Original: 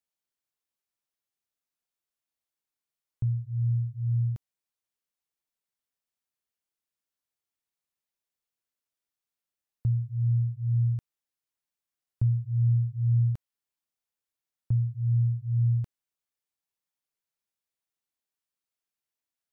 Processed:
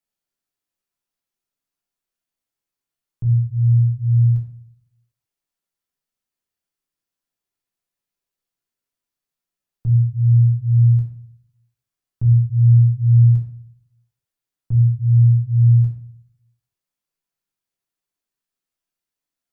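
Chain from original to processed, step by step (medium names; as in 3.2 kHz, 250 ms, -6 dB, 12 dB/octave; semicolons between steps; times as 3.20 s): peaking EQ 220 Hz +6 dB 0.42 oct; simulated room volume 47 m³, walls mixed, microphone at 0.68 m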